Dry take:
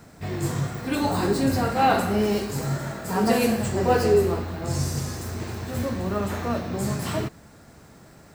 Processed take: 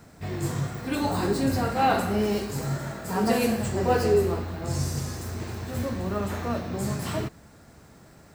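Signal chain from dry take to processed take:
parametric band 65 Hz +2.5 dB 0.95 octaves
level −2.5 dB

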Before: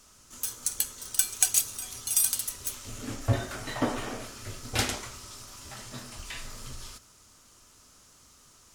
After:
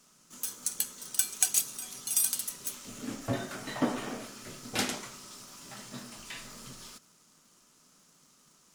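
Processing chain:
low shelf with overshoot 120 Hz −11.5 dB, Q 3
in parallel at −7 dB: bit-depth reduction 8 bits, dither none
on the sum: level −6 dB

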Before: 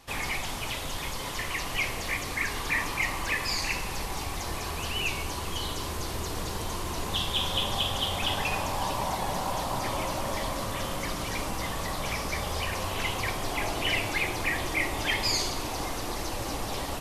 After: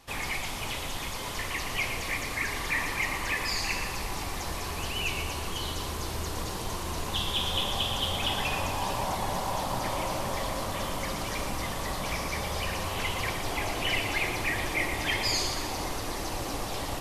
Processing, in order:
echo with a time of its own for lows and highs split 1,600 Hz, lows 516 ms, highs 118 ms, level −7.5 dB
level −1.5 dB

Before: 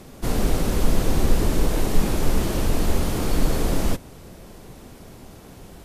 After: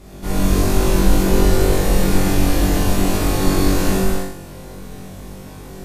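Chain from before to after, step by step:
flutter between parallel walls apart 3.6 metres, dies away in 0.63 s
mains hum 50 Hz, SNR 22 dB
reverb whose tail is shaped and stops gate 320 ms flat, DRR −6.5 dB
level −4.5 dB

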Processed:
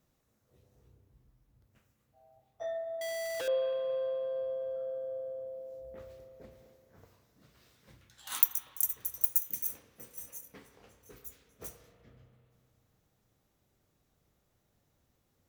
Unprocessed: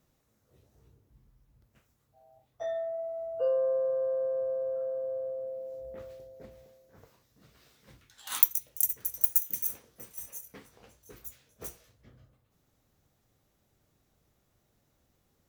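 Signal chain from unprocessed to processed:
0:03.01–0:03.48: sign of each sample alone
spring reverb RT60 2.9 s, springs 32/42 ms, chirp 35 ms, DRR 7.5 dB
level −3 dB

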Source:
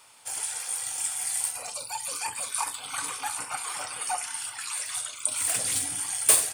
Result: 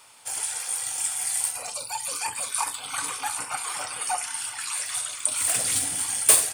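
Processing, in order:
0:04.21–0:06.22: feedback delay that plays each chunk backwards 168 ms, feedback 66%, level −11 dB
level +2.5 dB

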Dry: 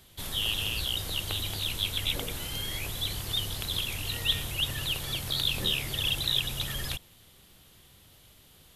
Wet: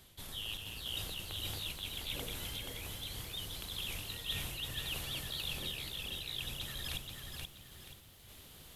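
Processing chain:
reversed playback
downward compressor 6 to 1, threshold −39 dBFS, peak gain reduction 16.5 dB
reversed playback
sample-and-hold tremolo 3.5 Hz, depth 55%
feedback echo at a low word length 479 ms, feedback 35%, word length 11 bits, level −4 dB
level +2 dB

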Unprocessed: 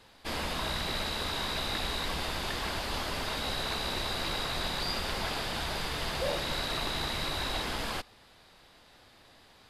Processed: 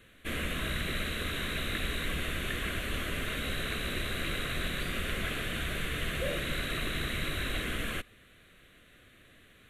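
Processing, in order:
phaser with its sweep stopped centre 2,100 Hz, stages 4
level +3 dB

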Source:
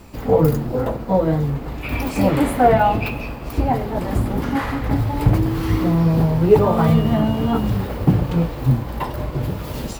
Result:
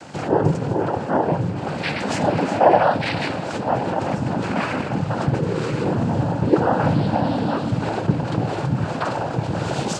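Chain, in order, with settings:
drawn EQ curve 410 Hz 0 dB, 650 Hz +7 dB, 970 Hz +2 dB
in parallel at +0.5 dB: compressor whose output falls as the input rises −26 dBFS, ratio −1
on the sum: cochlear-implant simulation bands 8
level −5.5 dB

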